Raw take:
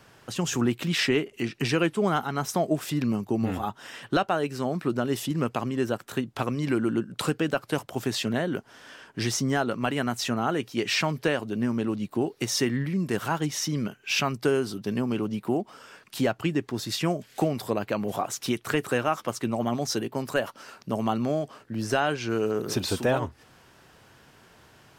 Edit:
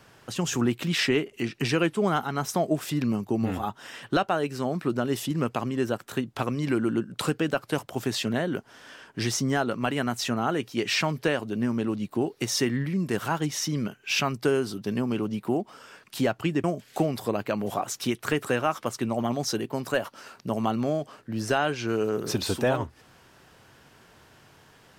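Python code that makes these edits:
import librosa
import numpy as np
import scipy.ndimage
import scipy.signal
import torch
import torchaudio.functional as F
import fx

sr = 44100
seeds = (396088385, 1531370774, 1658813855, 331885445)

y = fx.edit(x, sr, fx.cut(start_s=16.64, length_s=0.42), tone=tone)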